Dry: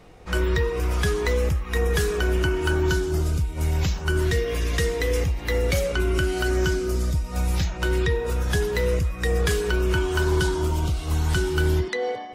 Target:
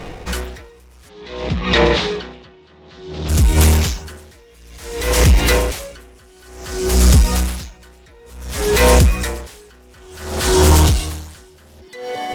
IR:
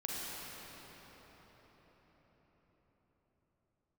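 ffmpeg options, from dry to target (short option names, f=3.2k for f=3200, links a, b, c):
-filter_complex "[0:a]aemphasis=mode=production:type=75fm,bandreject=f=1.3k:w=15,aeval=exprs='0.596*sin(PI/2*6.31*val(0)/0.596)':c=same,adynamicsmooth=sensitivity=6:basefreq=1.3k,asplit=3[a][b][c];[a]afade=t=out:st=1.08:d=0.02[d];[b]highpass=100,equalizer=f=170:t=q:w=4:g=8,equalizer=f=1.5k:t=q:w=4:g=-4,equalizer=f=3.7k:t=q:w=4:g=6,lowpass=f=4.5k:w=0.5412,lowpass=f=4.5k:w=1.3066,afade=t=in:st=1.08:d=0.02,afade=t=out:st=3.28:d=0.02[e];[c]afade=t=in:st=3.28:d=0.02[f];[d][e][f]amix=inputs=3:normalize=0,aeval=exprs='val(0)*pow(10,-37*(0.5-0.5*cos(2*PI*0.56*n/s))/20)':c=same,volume=-1dB"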